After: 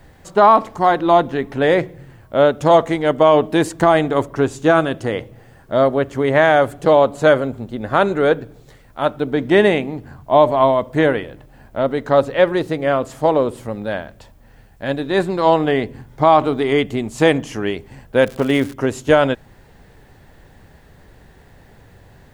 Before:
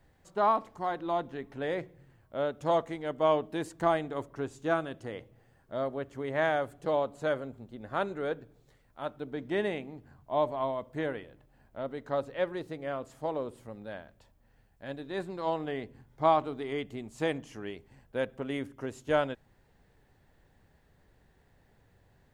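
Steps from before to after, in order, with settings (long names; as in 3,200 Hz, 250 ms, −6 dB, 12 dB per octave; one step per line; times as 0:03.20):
0:18.21–0:18.72: surface crackle 120 per second → 330 per second −42 dBFS
boost into a limiter +19 dB
level −1 dB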